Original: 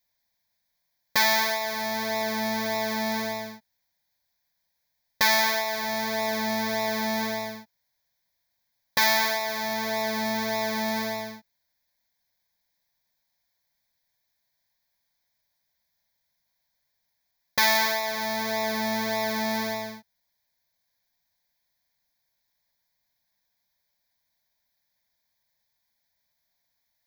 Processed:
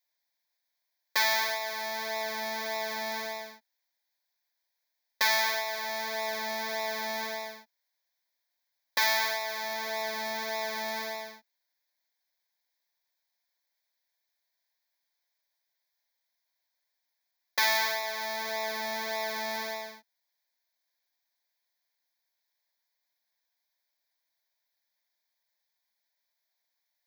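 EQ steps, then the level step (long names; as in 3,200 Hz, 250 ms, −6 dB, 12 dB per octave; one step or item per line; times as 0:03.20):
Butterworth high-pass 250 Hz 36 dB per octave
spectral tilt +2 dB per octave
high-shelf EQ 5,300 Hz −9.5 dB
−4.5 dB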